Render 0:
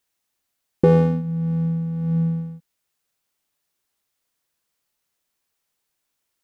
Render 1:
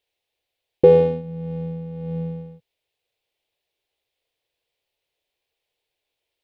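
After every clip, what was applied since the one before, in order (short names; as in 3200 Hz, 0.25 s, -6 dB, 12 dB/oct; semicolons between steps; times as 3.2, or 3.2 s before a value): EQ curve 110 Hz 0 dB, 210 Hz -12 dB, 460 Hz +7 dB, 790 Hz +1 dB, 1300 Hz -11 dB, 2400 Hz +3 dB, 3600 Hz +3 dB, 6300 Hz -11 dB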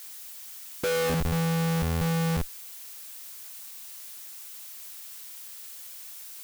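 bell 210 Hz -7.5 dB 0.21 oct; Schmitt trigger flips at -28.5 dBFS; added noise blue -43 dBFS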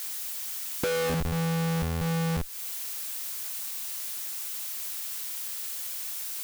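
compressor 5:1, threshold -36 dBFS, peak gain reduction 10.5 dB; gain +8 dB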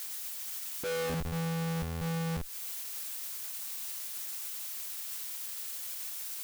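limiter -27 dBFS, peak gain reduction 10.5 dB; gain -2.5 dB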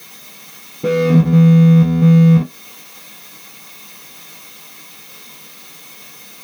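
reverb RT60 0.25 s, pre-delay 3 ms, DRR -6 dB; gain -1 dB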